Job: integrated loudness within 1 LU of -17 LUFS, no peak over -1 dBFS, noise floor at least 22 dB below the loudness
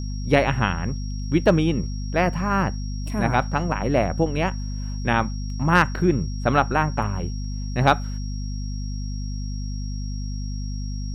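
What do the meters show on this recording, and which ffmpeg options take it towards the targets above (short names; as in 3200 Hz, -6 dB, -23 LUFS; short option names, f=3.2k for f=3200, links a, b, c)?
hum 50 Hz; harmonics up to 250 Hz; hum level -26 dBFS; steady tone 5600 Hz; tone level -42 dBFS; loudness -24.0 LUFS; peak -4.5 dBFS; loudness target -17.0 LUFS
-> -af "bandreject=f=50:t=h:w=4,bandreject=f=100:t=h:w=4,bandreject=f=150:t=h:w=4,bandreject=f=200:t=h:w=4,bandreject=f=250:t=h:w=4"
-af "bandreject=f=5.6k:w=30"
-af "volume=7dB,alimiter=limit=-1dB:level=0:latency=1"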